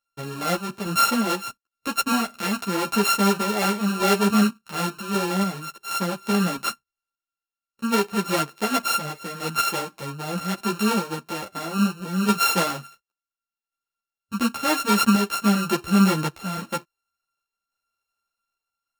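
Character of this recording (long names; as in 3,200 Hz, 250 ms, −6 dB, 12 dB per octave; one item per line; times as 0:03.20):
a buzz of ramps at a fixed pitch in blocks of 32 samples
sample-and-hold tremolo
a shimmering, thickened sound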